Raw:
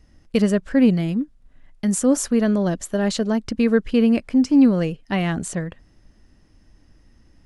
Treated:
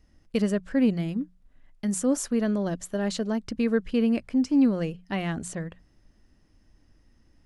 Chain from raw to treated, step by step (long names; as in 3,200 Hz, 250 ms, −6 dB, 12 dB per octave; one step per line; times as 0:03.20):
mains-hum notches 60/120/180 Hz
level −6.5 dB